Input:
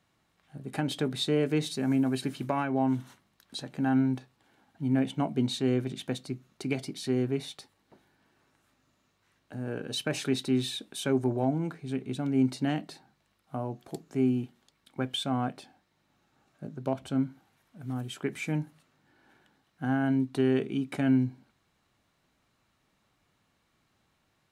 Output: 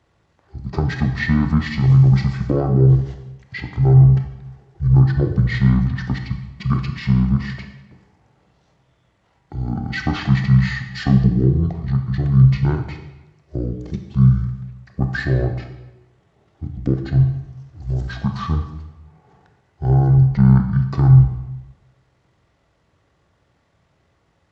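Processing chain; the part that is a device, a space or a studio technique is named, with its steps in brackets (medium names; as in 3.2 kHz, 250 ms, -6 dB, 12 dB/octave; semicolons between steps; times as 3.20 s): high-pass 150 Hz 12 dB/octave; monster voice (pitch shift -12 st; bass shelf 160 Hz +7.5 dB; reverberation RT60 1.0 s, pre-delay 25 ms, DRR 5.5 dB); trim +8 dB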